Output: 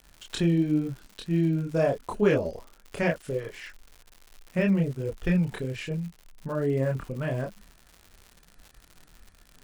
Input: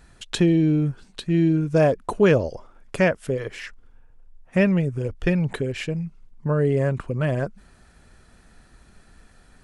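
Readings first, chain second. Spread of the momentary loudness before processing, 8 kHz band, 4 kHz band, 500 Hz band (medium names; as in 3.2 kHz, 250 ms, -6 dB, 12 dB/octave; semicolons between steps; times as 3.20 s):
14 LU, -5.5 dB, -5.5 dB, -5.5 dB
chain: expander -48 dBFS; chorus voices 6, 0.84 Hz, delay 27 ms, depth 3.6 ms; crackle 150 per s -35 dBFS; trim -3 dB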